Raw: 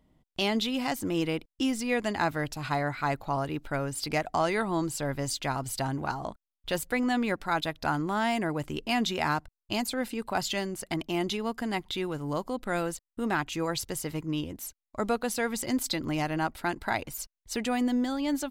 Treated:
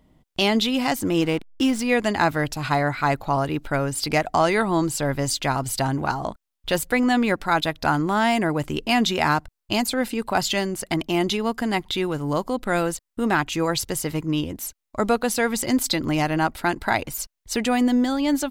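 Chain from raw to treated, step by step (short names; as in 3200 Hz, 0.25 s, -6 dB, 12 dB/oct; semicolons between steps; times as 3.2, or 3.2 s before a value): 1.21–1.83 backlash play -38 dBFS; gain +7.5 dB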